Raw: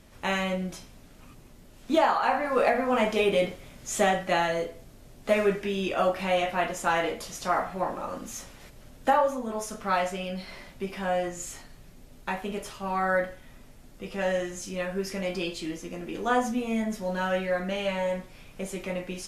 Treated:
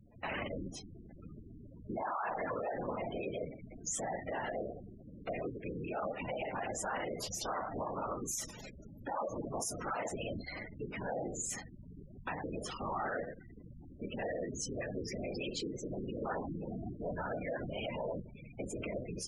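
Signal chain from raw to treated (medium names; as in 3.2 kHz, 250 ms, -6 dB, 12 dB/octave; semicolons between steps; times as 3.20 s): octave divider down 1 oct, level +3 dB; whisper effect; level rider gain up to 6 dB; 7.95–10.15 s: treble shelf 3.3 kHz +9.5 dB; compression 20:1, threshold -25 dBFS, peak gain reduction 15.5 dB; peak limiter -24.5 dBFS, peak gain reduction 10.5 dB; spectral gate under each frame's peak -15 dB strong; bass shelf 200 Hz -9.5 dB; hum notches 50/100/150 Hz; trim -2.5 dB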